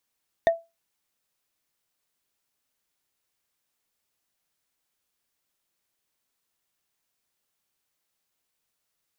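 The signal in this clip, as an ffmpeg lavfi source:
ffmpeg -f lavfi -i "aevalsrc='0.251*pow(10,-3*t/0.23)*sin(2*PI*667*t)+0.0891*pow(10,-3*t/0.068)*sin(2*PI*1838.9*t)+0.0316*pow(10,-3*t/0.03)*sin(2*PI*3604.5*t)+0.0112*pow(10,-3*t/0.017)*sin(2*PI*5958.3*t)+0.00398*pow(10,-3*t/0.01)*sin(2*PI*8897.8*t)':duration=0.45:sample_rate=44100" out.wav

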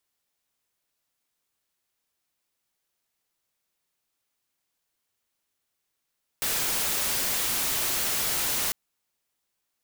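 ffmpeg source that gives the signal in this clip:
ffmpeg -f lavfi -i "anoisesrc=color=white:amplitude=0.0774:duration=2.3:sample_rate=44100:seed=1" out.wav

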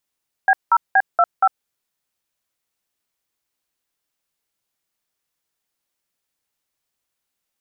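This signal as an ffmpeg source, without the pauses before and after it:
ffmpeg -f lavfi -i "aevalsrc='0.224*clip(min(mod(t,0.236),0.052-mod(t,0.236))/0.002,0,1)*(eq(floor(t/0.236),0)*(sin(2*PI*770*mod(t,0.236))+sin(2*PI*1633*mod(t,0.236)))+eq(floor(t/0.236),1)*(sin(2*PI*941*mod(t,0.236))+sin(2*PI*1336*mod(t,0.236)))+eq(floor(t/0.236),2)*(sin(2*PI*770*mod(t,0.236))+sin(2*PI*1633*mod(t,0.236)))+eq(floor(t/0.236),3)*(sin(2*PI*697*mod(t,0.236))+sin(2*PI*1336*mod(t,0.236)))+eq(floor(t/0.236),4)*(sin(2*PI*770*mod(t,0.236))+sin(2*PI*1336*mod(t,0.236))))':duration=1.18:sample_rate=44100" out.wav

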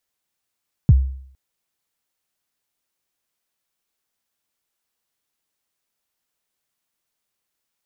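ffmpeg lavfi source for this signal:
ffmpeg -f lavfi -i "aevalsrc='0.562*pow(10,-3*t/0.61)*sin(2*PI*(170*0.036/log(66/170)*(exp(log(66/170)*min(t,0.036)/0.036)-1)+66*max(t-0.036,0)))':duration=0.46:sample_rate=44100" out.wav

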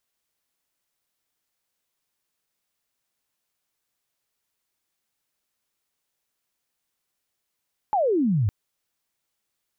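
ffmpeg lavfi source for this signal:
ffmpeg -f lavfi -i "aevalsrc='0.119*sin(2*PI*880*0.56/log(93/880)*(exp(log(93/880)*t/0.56)-1))':duration=0.56:sample_rate=44100" out.wav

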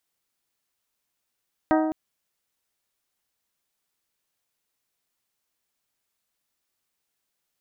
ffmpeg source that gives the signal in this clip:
ffmpeg -f lavfi -i "aevalsrc='0.126*pow(10,-3*t/1.53)*sin(2*PI*314*t)+0.0944*pow(10,-3*t/0.942)*sin(2*PI*628*t)+0.0708*pow(10,-3*t/0.829)*sin(2*PI*753.6*t)+0.0531*pow(10,-3*t/0.709)*sin(2*PI*942*t)+0.0398*pow(10,-3*t/0.58)*sin(2*PI*1256*t)+0.0299*pow(10,-3*t/0.496)*sin(2*PI*1570*t)+0.0224*pow(10,-3*t/0.437)*sin(2*PI*1884*t)':duration=0.21:sample_rate=44100" out.wav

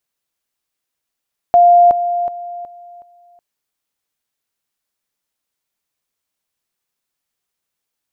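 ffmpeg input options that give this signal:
ffmpeg -f lavfi -i "aevalsrc='pow(10,(-5-10*floor(t/0.37))/20)*sin(2*PI*700*t)':duration=1.85:sample_rate=44100" out.wav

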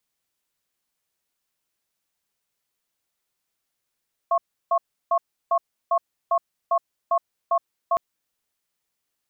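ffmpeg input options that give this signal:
ffmpeg -f lavfi -i "aevalsrc='0.106*(sin(2*PI*681*t)+sin(2*PI*1090*t))*clip(min(mod(t,0.4),0.07-mod(t,0.4))/0.005,0,1)':duration=3.66:sample_rate=44100" out.wav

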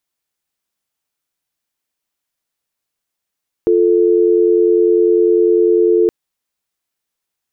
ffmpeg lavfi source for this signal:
ffmpeg -f lavfi -i "aevalsrc='0.266*(sin(2*PI*350*t)+sin(2*PI*440*t))':duration=2.42:sample_rate=44100" out.wav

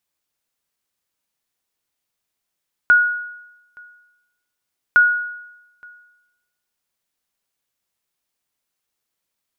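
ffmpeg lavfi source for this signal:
ffmpeg -f lavfi -i "aevalsrc='0.501*(sin(2*PI*1450*mod(t,2.06))*exp(-6.91*mod(t,2.06)/0.92)+0.0355*sin(2*PI*1450*max(mod(t,2.06)-0.87,0))*exp(-6.91*max(mod(t,2.06)-0.87,0)/0.92))':duration=4.12:sample_rate=44100" out.wav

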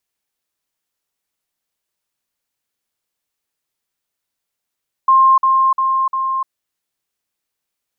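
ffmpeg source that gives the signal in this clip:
ffmpeg -f lavfi -i "aevalsrc='pow(10,(-7-3*floor(t/0.35))/20)*sin(2*PI*1060*t)*clip(min(mod(t,0.35),0.3-mod(t,0.35))/0.005,0,1)':duration=1.4:sample_rate=44100" out.wav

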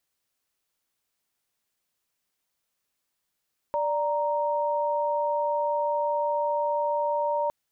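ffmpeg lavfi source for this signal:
ffmpeg -f lavfi -i "aevalsrc='0.0501*(sin(2*PI*587.33*t)+sin(2*PI*932.33*t))':duration=3.76:sample_rate=44100" out.wav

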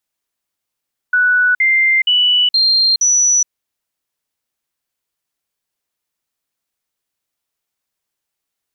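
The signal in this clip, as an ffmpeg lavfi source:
ffmpeg -f lavfi -i "aevalsrc='0.335*clip(min(mod(t,0.47),0.42-mod(t,0.47))/0.005,0,1)*sin(2*PI*1480*pow(2,floor(t/0.47)/2)*mod(t,0.47))':duration=2.35:sample_rate=44100" out.wav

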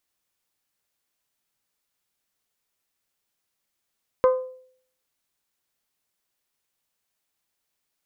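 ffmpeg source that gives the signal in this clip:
ffmpeg -f lavfi -i "aevalsrc='0.251*pow(10,-3*t/0.59)*sin(2*PI*513*t)+0.1*pow(10,-3*t/0.363)*sin(2*PI*1026*t)+0.0398*pow(10,-3*t/0.32)*sin(2*PI*1231.2*t)+0.0158*pow(10,-3*t/0.273)*sin(2*PI*1539*t)+0.00631*pow(10,-3*t/0.224)*sin(2*PI*2052*t)':duration=0.89:sample_rate=44100" out.wav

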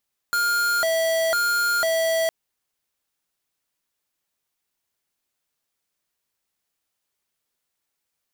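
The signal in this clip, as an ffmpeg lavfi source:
ffmpeg -f lavfi -i "aevalsrc='0.0841*(2*lt(mod((1032*t+378/1*(0.5-abs(mod(1*t,1)-0.5))),1),0.5)-1)':duration=1.96:sample_rate=44100" out.wav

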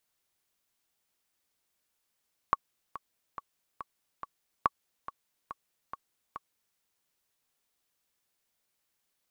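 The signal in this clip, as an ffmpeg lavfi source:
ffmpeg -f lavfi -i "aevalsrc='pow(10,(-10-15.5*gte(mod(t,5*60/141),60/141))/20)*sin(2*PI*1120*mod(t,60/141))*exp(-6.91*mod(t,60/141)/0.03)':duration=4.25:sample_rate=44100" out.wav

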